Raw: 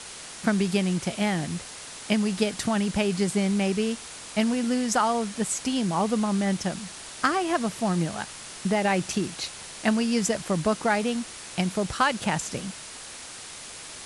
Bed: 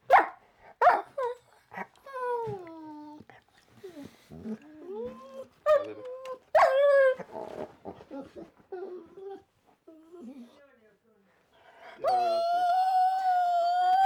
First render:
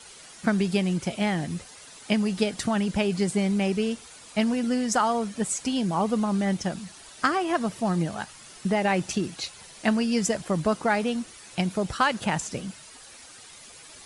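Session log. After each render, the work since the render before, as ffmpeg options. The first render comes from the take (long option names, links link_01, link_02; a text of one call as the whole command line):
ffmpeg -i in.wav -af "afftdn=noise_reduction=10:noise_floor=-41" out.wav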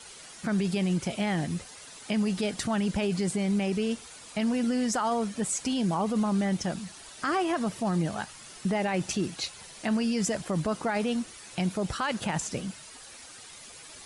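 ffmpeg -i in.wav -af "alimiter=limit=-20dB:level=0:latency=1:release=18" out.wav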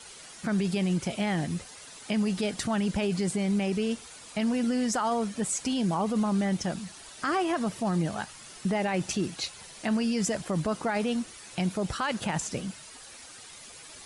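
ffmpeg -i in.wav -af anull out.wav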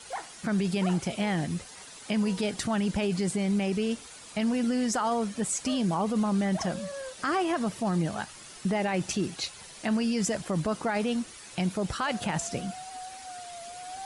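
ffmpeg -i in.wav -i bed.wav -filter_complex "[1:a]volume=-17.5dB[link_01];[0:a][link_01]amix=inputs=2:normalize=0" out.wav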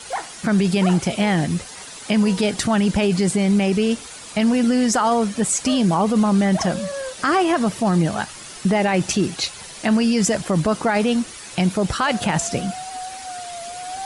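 ffmpeg -i in.wav -af "volume=9.5dB" out.wav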